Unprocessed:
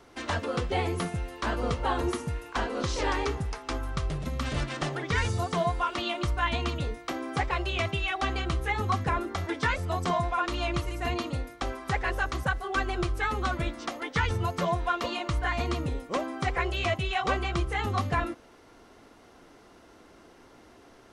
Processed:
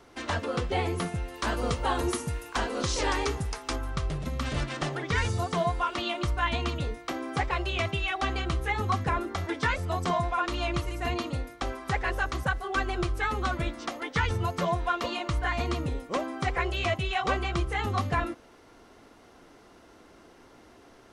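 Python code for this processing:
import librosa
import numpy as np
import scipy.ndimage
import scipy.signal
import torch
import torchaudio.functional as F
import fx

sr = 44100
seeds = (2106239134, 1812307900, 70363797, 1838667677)

y = fx.high_shelf(x, sr, hz=5600.0, db=10.5, at=(1.34, 3.76))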